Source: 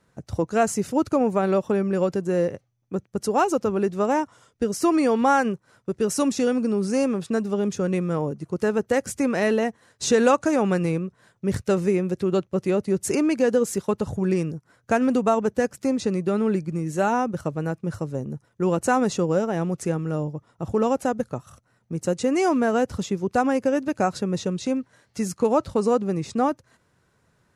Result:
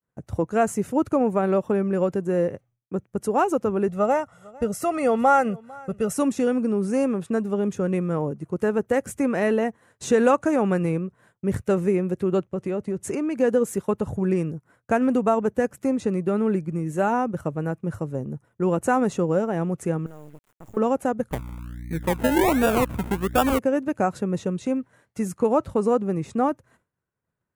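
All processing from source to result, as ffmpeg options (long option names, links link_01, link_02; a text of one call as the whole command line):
ffmpeg -i in.wav -filter_complex "[0:a]asettb=1/sr,asplit=3[link_01][link_02][link_03];[link_01]atrim=end=3.884[link_04];[link_02]atrim=start=3.88:end=6.13,asetpts=PTS-STARTPTS,afade=type=in:duration=0.004:curve=qsin,afade=type=out:start_time=2.246:duration=0.004:curve=qsin,aecho=1:1:1.5:0.69,atrim=end_sample=99225,aecho=1:1:451:0.0668,atrim=end_sample=99225[link_05];[link_03]atrim=start=6.126[link_06];[link_04][link_05]acrossfade=duration=0.004:curve1=hsin:curve2=qsin[link_07];[link_07][link_06]acrossfade=duration=0.004:curve1=qsin:curve2=hsin,asettb=1/sr,asplit=3[link_08][link_09][link_10];[link_08]atrim=end=12.464[link_11];[link_09]atrim=start=12.46:end=13.36,asetpts=PTS-STARTPTS,afade=type=in:duration=0.004:curve=qsin,afade=type=out:start_time=0.896:duration=0.004:curve=qsin,lowpass=9100,acompressor=threshold=-23dB:ratio=4:attack=3.2:release=140:knee=1:detection=peak[link_12];[link_10]atrim=start=13.356[link_13];[link_11][link_12]acrossfade=duration=0.004:curve1=hsin:curve2=qsin[link_14];[link_14][link_13]acrossfade=duration=0.004:curve1=qsin:curve2=hsin,asettb=1/sr,asplit=3[link_15][link_16][link_17];[link_15]atrim=end=20.064[link_18];[link_16]atrim=start=20.06:end=20.77,asetpts=PTS-STARTPTS,afade=type=in:duration=0.004:curve=qsin,afade=type=out:start_time=0.706:duration=0.004:curve=qsin,acompressor=threshold=-41dB:ratio=3:attack=3.2:release=140:knee=1:detection=peak,lowpass=frequency=7000:width_type=q:width=4.6,acrusher=bits=6:dc=4:mix=0:aa=0.000001[link_19];[link_17]atrim=start=20.766[link_20];[link_18][link_19]acrossfade=duration=0.004:curve1=hsin:curve2=qsin[link_21];[link_21][link_20]acrossfade=duration=0.004:curve1=qsin:curve2=hsin,asettb=1/sr,asplit=3[link_22][link_23][link_24];[link_22]atrim=end=21.314[link_25];[link_23]atrim=start=21.31:end=23.59,asetpts=PTS-STARTPTS,afade=type=in:duration=0.004:curve=qsin,afade=type=out:start_time=2.276:duration=0.004:curve=qsin,lowpass=frequency=2100:width_type=q:width=5,aeval=exprs='val(0)+0.02*(sin(2*PI*60*n/s)+sin(2*PI*2*60*n/s)/2+sin(2*PI*3*60*n/s)/3+sin(2*PI*4*60*n/s)/4+sin(2*PI*5*60*n/s)/5)':channel_layout=same,acrusher=samples=30:mix=1:aa=0.000001:lfo=1:lforange=18:lforate=1.3[link_26];[link_24]atrim=start=23.586[link_27];[link_25][link_26]acrossfade=duration=0.004:curve1=hsin:curve2=qsin[link_28];[link_28][link_27]acrossfade=duration=0.004:curve1=qsin:curve2=hsin,agate=range=-33dB:threshold=-52dB:ratio=3:detection=peak,equalizer=frequency=4800:width_type=o:width=1.1:gain=-12" out.wav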